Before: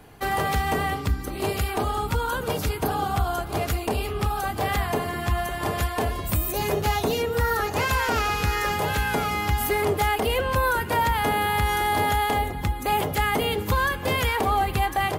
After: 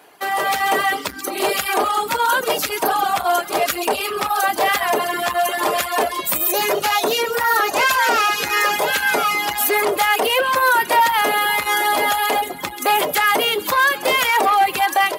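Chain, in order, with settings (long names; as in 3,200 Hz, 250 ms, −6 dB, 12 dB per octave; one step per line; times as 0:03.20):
in parallel at −3 dB: brickwall limiter −19.5 dBFS, peak gain reduction 7 dB
on the sum: automatic gain control gain up to 11.5 dB
delay with a high-pass on its return 134 ms, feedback 34%, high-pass 3,000 Hz, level −7 dB
on a send at −11 dB: convolution reverb RT60 0.50 s, pre-delay 3 ms
on the sum: reverb reduction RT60 0.98 s
soft clipping −7.5 dBFS, distortion −18 dB
high-pass filter 470 Hz 12 dB per octave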